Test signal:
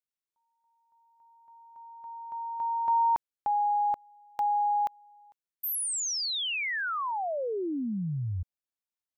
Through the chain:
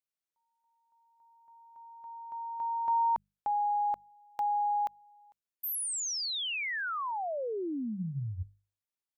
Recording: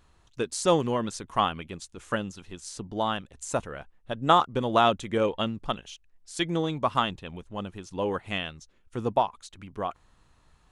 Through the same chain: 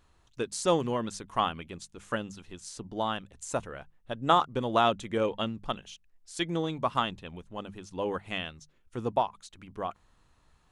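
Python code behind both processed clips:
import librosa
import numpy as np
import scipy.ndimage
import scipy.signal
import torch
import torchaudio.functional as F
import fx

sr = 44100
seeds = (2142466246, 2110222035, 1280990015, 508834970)

y = fx.hum_notches(x, sr, base_hz=50, count=4)
y = y * 10.0 ** (-3.0 / 20.0)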